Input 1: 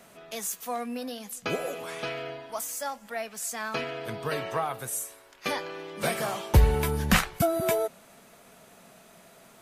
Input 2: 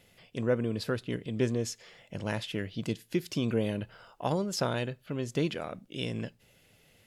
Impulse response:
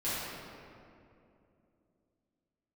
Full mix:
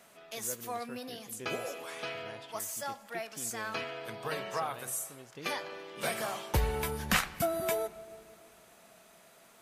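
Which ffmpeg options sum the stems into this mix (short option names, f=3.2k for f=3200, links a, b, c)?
-filter_complex "[0:a]volume=-4dB,asplit=2[a][b];[b]volume=-23.5dB[c];[1:a]volume=-13.5dB[d];[2:a]atrim=start_sample=2205[e];[c][e]afir=irnorm=-1:irlink=0[f];[a][d][f]amix=inputs=3:normalize=0,lowshelf=f=380:g=-8"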